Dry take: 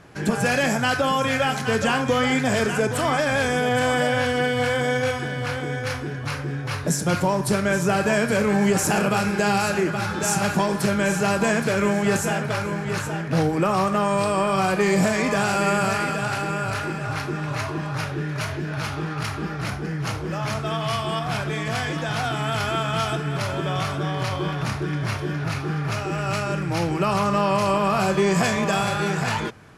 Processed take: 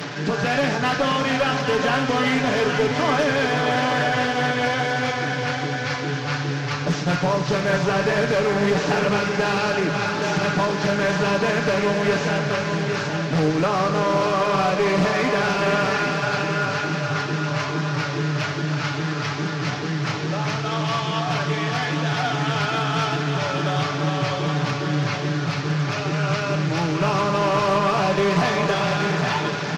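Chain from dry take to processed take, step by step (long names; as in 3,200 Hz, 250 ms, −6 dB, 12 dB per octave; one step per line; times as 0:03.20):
linear delta modulator 32 kbit/s, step −28.5 dBFS
high-pass filter 130 Hz 24 dB per octave
comb filter 6.9 ms, depth 55%
reversed playback
upward compression, threshold −22 dBFS
reversed playback
asymmetric clip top −17.5 dBFS
on a send: feedback delay with all-pass diffusion 543 ms, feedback 47%, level −7 dB
on the sum: highs frequency-modulated by the lows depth 0.22 ms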